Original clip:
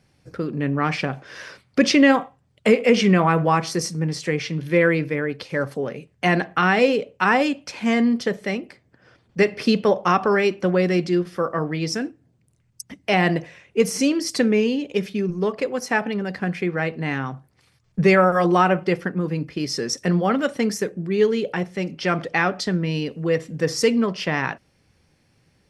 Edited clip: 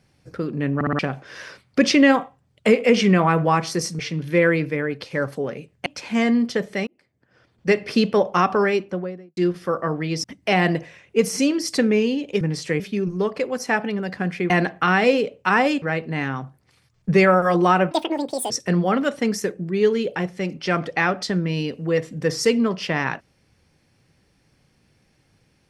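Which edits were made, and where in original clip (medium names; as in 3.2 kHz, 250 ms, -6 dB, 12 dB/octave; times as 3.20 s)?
0.75 s: stutter in place 0.06 s, 4 plays
3.99–4.38 s: move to 15.02 s
6.25–7.57 s: move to 16.72 s
8.58–9.45 s: fade in
10.27–11.08 s: studio fade out
11.95–12.85 s: delete
18.81–19.88 s: speed 180%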